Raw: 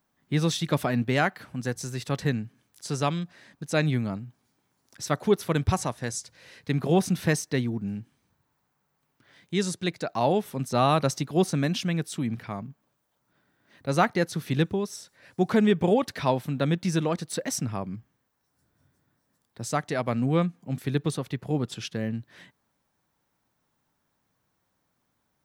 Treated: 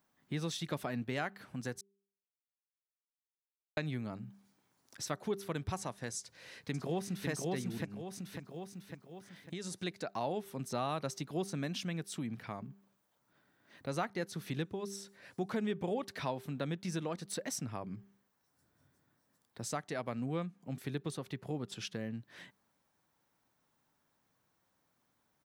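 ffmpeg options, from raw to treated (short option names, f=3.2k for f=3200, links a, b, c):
-filter_complex "[0:a]asplit=2[a][b];[b]afade=t=in:st=6.19:d=0.01,afade=t=out:st=7.29:d=0.01,aecho=0:1:550|1100|1650|2200|2750:0.794328|0.317731|0.127093|0.050837|0.0203348[c];[a][c]amix=inputs=2:normalize=0,asettb=1/sr,asplit=3[d][e][f];[d]atrim=end=7.854[g];[e]atrim=start=7.85:end=9.83,asetpts=PTS-STARTPTS,afade=t=in:d=0.004:c=qsin,afade=t=out:st=1.976:d=0.004:c=qsin,acompressor=threshold=-31dB:ratio=6:attack=3.2:release=140:knee=1:detection=peak[h];[f]atrim=start=9.826[i];[g][h]acrossfade=d=0.004:c1=hsin:c2=qsin[j];[j][i]acrossfade=d=0.004:c1=qsin:c2=hsin,asplit=3[k][l][m];[k]atrim=end=1.81,asetpts=PTS-STARTPTS,afade=t=out:st=1.806:d=0.004:c=hsin[n];[l]atrim=start=1.81:end=3.77,asetpts=PTS-STARTPTS,volume=0[o];[m]atrim=start=3.77,asetpts=PTS-STARTPTS,afade=t=in:d=0.004:c=hsin[p];[n][o][p]concat=n=3:v=0:a=1,lowshelf=f=120:g=-6.5,bandreject=f=197.7:t=h:w=4,bandreject=f=395.4:t=h:w=4,acompressor=threshold=-39dB:ratio=2,volume=-2dB"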